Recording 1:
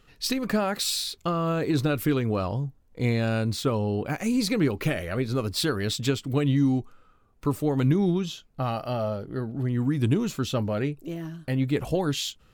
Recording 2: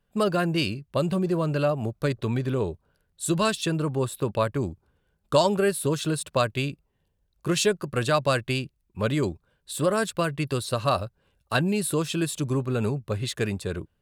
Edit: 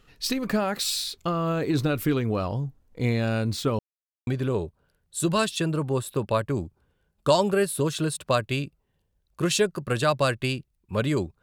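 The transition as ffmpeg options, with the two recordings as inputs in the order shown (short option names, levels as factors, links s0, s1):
-filter_complex "[0:a]apad=whole_dur=11.42,atrim=end=11.42,asplit=2[s0][s1];[s0]atrim=end=3.79,asetpts=PTS-STARTPTS,afade=t=out:st=3.786:d=0.004:c=hsin[s2];[s1]atrim=start=3.79:end=4.27,asetpts=PTS-STARTPTS,volume=0[s3];[1:a]atrim=start=2.33:end=9.48,asetpts=PTS-STARTPTS,afade=t=in:d=0.004:c=hsin[s4];[s2][s3][s4]concat=n=3:v=0:a=1"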